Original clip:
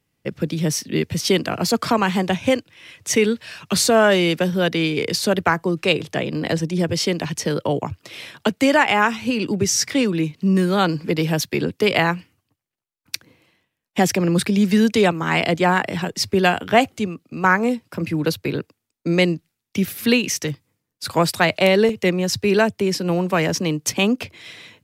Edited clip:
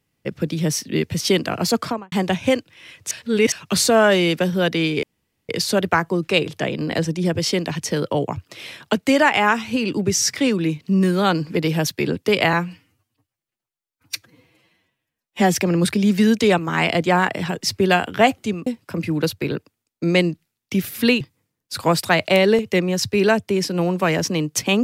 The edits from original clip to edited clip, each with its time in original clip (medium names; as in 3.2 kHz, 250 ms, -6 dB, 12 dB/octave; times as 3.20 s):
1.75–2.12 s: studio fade out
3.11–3.52 s: reverse
5.03 s: insert room tone 0.46 s
12.07–14.08 s: stretch 1.5×
17.20–17.70 s: delete
20.24–20.51 s: delete